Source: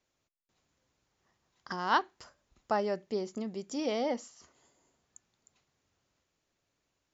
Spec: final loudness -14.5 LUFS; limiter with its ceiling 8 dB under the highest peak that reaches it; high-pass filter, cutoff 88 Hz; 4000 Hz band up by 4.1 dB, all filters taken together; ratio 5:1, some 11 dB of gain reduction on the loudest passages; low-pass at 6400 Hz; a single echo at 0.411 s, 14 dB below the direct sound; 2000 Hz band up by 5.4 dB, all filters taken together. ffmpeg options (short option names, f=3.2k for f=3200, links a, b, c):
-af "highpass=88,lowpass=6.4k,equalizer=f=2k:t=o:g=7,equalizer=f=4k:t=o:g=3.5,acompressor=threshold=-31dB:ratio=5,alimiter=level_in=3dB:limit=-24dB:level=0:latency=1,volume=-3dB,aecho=1:1:411:0.2,volume=25dB"